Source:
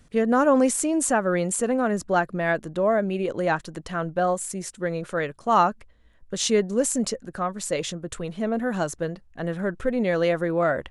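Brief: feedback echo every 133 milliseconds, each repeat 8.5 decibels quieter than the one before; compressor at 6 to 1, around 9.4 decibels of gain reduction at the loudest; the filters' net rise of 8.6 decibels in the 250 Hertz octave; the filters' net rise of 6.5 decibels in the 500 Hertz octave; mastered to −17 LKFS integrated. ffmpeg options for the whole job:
ffmpeg -i in.wav -af "equalizer=frequency=250:width_type=o:gain=9,equalizer=frequency=500:width_type=o:gain=5.5,acompressor=threshold=-17dB:ratio=6,aecho=1:1:133|266|399|532:0.376|0.143|0.0543|0.0206,volume=5.5dB" out.wav

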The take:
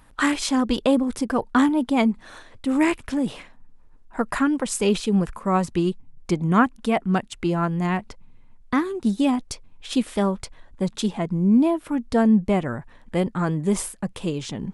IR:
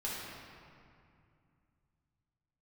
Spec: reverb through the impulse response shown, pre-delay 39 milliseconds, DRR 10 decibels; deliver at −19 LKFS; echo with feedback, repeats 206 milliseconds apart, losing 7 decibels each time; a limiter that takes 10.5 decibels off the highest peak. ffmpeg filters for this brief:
-filter_complex "[0:a]alimiter=limit=-17dB:level=0:latency=1,aecho=1:1:206|412|618|824|1030:0.447|0.201|0.0905|0.0407|0.0183,asplit=2[link_01][link_02];[1:a]atrim=start_sample=2205,adelay=39[link_03];[link_02][link_03]afir=irnorm=-1:irlink=0,volume=-13.5dB[link_04];[link_01][link_04]amix=inputs=2:normalize=0,volume=6.5dB"

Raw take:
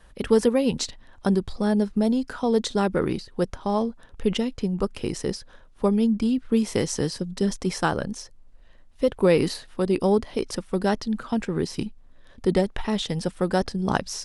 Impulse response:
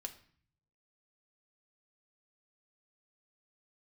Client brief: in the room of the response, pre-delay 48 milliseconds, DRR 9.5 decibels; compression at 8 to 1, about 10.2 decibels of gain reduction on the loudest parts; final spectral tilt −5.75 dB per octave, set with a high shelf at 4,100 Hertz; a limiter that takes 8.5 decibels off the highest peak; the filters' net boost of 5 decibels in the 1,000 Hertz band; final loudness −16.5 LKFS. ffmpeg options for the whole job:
-filter_complex "[0:a]equalizer=frequency=1000:width_type=o:gain=7,highshelf=frequency=4100:gain=-7,acompressor=threshold=-23dB:ratio=8,alimiter=limit=-19.5dB:level=0:latency=1,asplit=2[link_01][link_02];[1:a]atrim=start_sample=2205,adelay=48[link_03];[link_02][link_03]afir=irnorm=-1:irlink=0,volume=-6.5dB[link_04];[link_01][link_04]amix=inputs=2:normalize=0,volume=14.5dB"

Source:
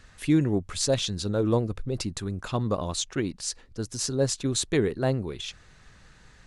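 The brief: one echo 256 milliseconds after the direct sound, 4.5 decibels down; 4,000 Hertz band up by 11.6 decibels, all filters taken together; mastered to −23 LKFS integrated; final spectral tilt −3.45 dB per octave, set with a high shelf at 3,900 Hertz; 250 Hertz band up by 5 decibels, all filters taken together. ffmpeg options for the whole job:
ffmpeg -i in.wav -af "equalizer=frequency=250:width_type=o:gain=6.5,highshelf=frequency=3900:gain=8.5,equalizer=frequency=4000:width_type=o:gain=8.5,aecho=1:1:256:0.596,volume=-2.5dB" out.wav

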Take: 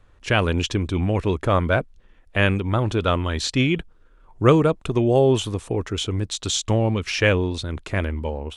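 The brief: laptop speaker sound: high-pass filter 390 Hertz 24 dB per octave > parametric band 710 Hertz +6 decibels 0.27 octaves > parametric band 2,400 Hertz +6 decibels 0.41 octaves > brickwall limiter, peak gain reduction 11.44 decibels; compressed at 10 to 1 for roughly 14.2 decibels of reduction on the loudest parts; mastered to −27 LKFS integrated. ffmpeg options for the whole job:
ffmpeg -i in.wav -af "acompressor=threshold=-24dB:ratio=10,highpass=frequency=390:width=0.5412,highpass=frequency=390:width=1.3066,equalizer=frequency=710:width_type=o:width=0.27:gain=6,equalizer=frequency=2400:width_type=o:width=0.41:gain=6,volume=8dB,alimiter=limit=-15.5dB:level=0:latency=1" out.wav

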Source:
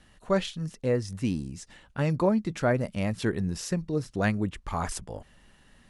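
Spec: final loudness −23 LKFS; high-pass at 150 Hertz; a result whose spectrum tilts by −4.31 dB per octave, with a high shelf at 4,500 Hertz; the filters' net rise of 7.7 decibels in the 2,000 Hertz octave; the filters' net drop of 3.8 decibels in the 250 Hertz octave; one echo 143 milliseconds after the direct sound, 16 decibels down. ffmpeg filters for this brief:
ffmpeg -i in.wav -af "highpass=150,equalizer=frequency=250:width_type=o:gain=-4,equalizer=frequency=2000:width_type=o:gain=9,highshelf=frequency=4500:gain=5,aecho=1:1:143:0.158,volume=6dB" out.wav

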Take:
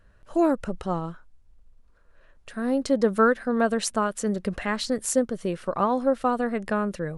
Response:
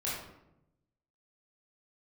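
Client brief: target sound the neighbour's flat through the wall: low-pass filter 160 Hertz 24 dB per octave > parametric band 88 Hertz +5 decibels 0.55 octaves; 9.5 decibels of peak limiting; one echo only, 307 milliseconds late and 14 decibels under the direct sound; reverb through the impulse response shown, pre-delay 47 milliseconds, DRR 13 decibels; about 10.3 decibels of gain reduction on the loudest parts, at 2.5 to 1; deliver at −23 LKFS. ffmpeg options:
-filter_complex "[0:a]acompressor=threshold=-32dB:ratio=2.5,alimiter=level_in=2dB:limit=-24dB:level=0:latency=1,volume=-2dB,aecho=1:1:307:0.2,asplit=2[link_01][link_02];[1:a]atrim=start_sample=2205,adelay=47[link_03];[link_02][link_03]afir=irnorm=-1:irlink=0,volume=-18dB[link_04];[link_01][link_04]amix=inputs=2:normalize=0,lowpass=frequency=160:width=0.5412,lowpass=frequency=160:width=1.3066,equalizer=frequency=88:width_type=o:width=0.55:gain=5,volume=27dB"

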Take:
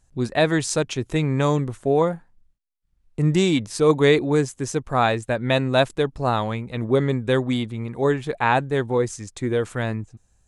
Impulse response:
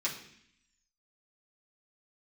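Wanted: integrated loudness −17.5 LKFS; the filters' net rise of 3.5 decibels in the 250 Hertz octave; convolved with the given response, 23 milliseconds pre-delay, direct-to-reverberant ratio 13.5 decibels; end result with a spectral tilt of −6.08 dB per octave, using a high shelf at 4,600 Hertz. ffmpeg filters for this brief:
-filter_complex "[0:a]equalizer=frequency=250:width_type=o:gain=4.5,highshelf=frequency=4600:gain=-5,asplit=2[link_01][link_02];[1:a]atrim=start_sample=2205,adelay=23[link_03];[link_02][link_03]afir=irnorm=-1:irlink=0,volume=-18.5dB[link_04];[link_01][link_04]amix=inputs=2:normalize=0,volume=3dB"

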